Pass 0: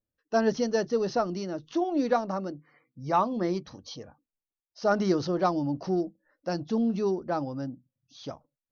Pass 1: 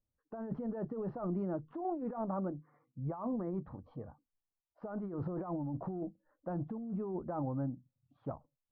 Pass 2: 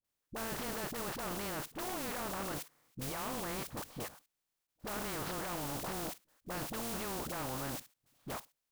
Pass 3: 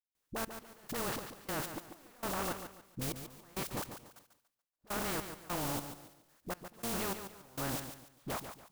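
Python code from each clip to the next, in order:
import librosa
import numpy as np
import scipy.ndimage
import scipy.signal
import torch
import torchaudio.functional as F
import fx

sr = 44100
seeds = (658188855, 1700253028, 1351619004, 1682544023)

y1 = scipy.signal.sosfilt(scipy.signal.butter(4, 1100.0, 'lowpass', fs=sr, output='sos'), x)
y1 = fx.peak_eq(y1, sr, hz=410.0, db=-9.5, octaves=2.7)
y1 = fx.over_compress(y1, sr, threshold_db=-39.0, ratio=-1.0)
y1 = y1 * librosa.db_to_amplitude(1.5)
y2 = fx.spec_flatten(y1, sr, power=0.28)
y2 = fx.level_steps(y2, sr, step_db=16)
y2 = fx.dispersion(y2, sr, late='highs', ms=45.0, hz=540.0)
y2 = y2 * librosa.db_to_amplitude(9.0)
y3 = fx.step_gate(y2, sr, bpm=101, pattern='.xx...xx.', floor_db=-24.0, edge_ms=4.5)
y3 = fx.echo_feedback(y3, sr, ms=143, feedback_pct=31, wet_db=-9.0)
y3 = y3 * librosa.db_to_amplitude(3.0)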